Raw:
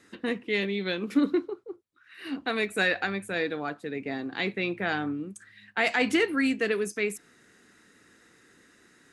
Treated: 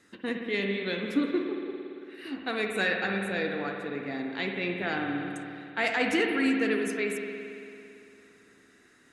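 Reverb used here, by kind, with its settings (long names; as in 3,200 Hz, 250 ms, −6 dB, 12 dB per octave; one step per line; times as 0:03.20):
spring reverb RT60 2.7 s, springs 56 ms, chirp 40 ms, DRR 2 dB
level −3 dB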